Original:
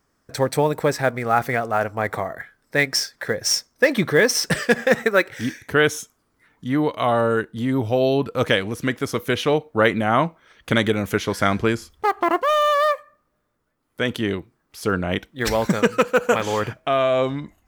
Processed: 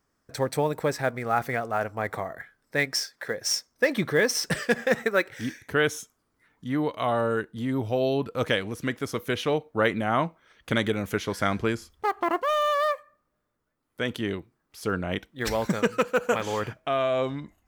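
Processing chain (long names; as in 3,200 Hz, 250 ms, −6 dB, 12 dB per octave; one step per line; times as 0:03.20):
0:02.92–0:03.68: low-shelf EQ 140 Hz −11 dB
level −6 dB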